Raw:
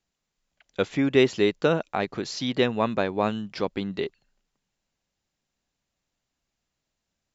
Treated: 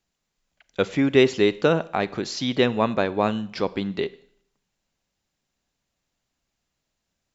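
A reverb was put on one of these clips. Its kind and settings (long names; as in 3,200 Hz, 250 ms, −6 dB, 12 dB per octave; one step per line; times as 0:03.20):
four-comb reverb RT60 0.62 s, combs from 33 ms, DRR 17.5 dB
level +2.5 dB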